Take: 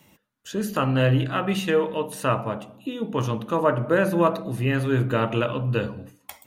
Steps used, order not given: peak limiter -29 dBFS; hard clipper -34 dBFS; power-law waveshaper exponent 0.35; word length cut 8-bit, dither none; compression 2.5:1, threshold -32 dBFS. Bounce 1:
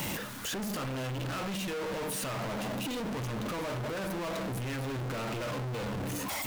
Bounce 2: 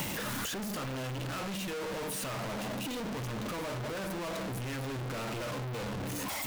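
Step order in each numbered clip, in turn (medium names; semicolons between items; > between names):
compression > power-law waveshaper > word length cut > peak limiter > hard clipper; power-law waveshaper > peak limiter > hard clipper > compression > word length cut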